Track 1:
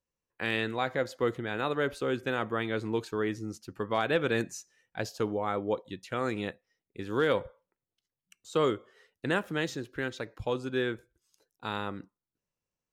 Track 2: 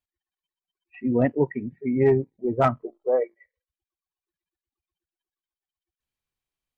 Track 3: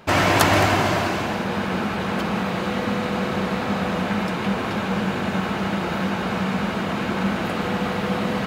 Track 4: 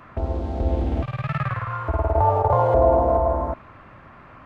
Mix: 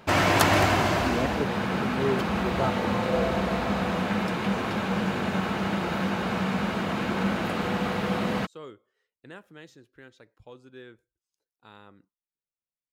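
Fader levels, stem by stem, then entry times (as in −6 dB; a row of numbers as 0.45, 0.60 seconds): −16.0, −8.5, −3.5, −15.0 decibels; 0.00, 0.00, 0.00, 0.40 seconds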